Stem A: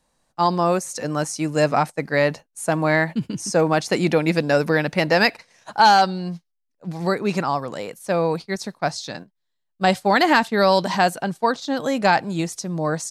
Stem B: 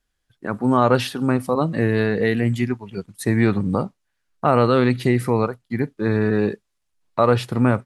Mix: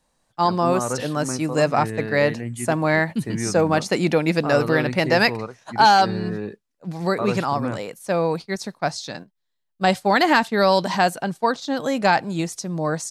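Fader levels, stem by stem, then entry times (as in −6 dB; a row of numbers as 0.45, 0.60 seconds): −0.5, −10.0 decibels; 0.00, 0.00 seconds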